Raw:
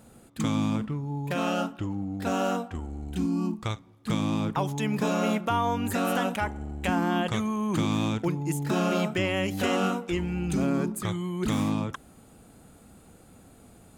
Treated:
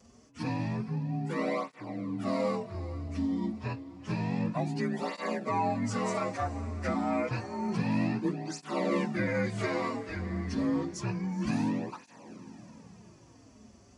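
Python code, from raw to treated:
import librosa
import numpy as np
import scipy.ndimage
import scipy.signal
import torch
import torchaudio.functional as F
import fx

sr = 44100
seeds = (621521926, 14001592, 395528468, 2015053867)

y = fx.partial_stretch(x, sr, pct=88)
y = fx.echo_diffused(y, sr, ms=455, feedback_pct=56, wet_db=-15)
y = fx.flanger_cancel(y, sr, hz=0.29, depth_ms=6.7)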